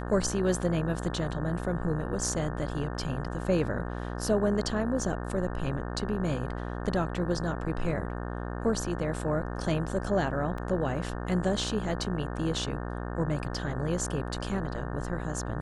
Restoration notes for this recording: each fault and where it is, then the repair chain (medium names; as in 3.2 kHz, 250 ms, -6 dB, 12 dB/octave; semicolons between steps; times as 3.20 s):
buzz 60 Hz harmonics 30 -35 dBFS
10.58 s: dropout 3 ms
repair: de-hum 60 Hz, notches 30; interpolate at 10.58 s, 3 ms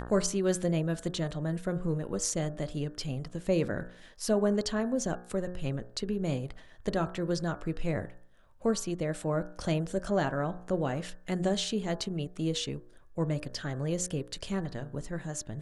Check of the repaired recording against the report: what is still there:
nothing left